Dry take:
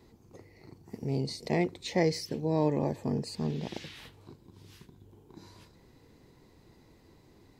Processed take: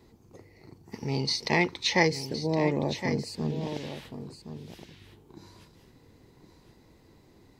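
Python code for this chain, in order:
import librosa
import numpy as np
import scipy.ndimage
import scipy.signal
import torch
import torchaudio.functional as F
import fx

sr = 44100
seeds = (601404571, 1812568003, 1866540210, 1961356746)

y = fx.spec_box(x, sr, start_s=0.92, length_s=1.15, low_hz=810.0, high_hz=6500.0, gain_db=11)
y = y + 10.0 ** (-10.5 / 20.0) * np.pad(y, (int(1066 * sr / 1000.0), 0))[:len(y)]
y = y * librosa.db_to_amplitude(1.0)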